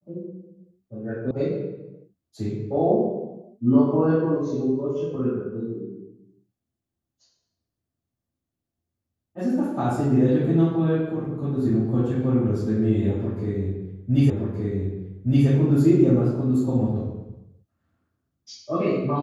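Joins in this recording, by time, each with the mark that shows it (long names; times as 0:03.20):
0:01.31: cut off before it has died away
0:14.30: the same again, the last 1.17 s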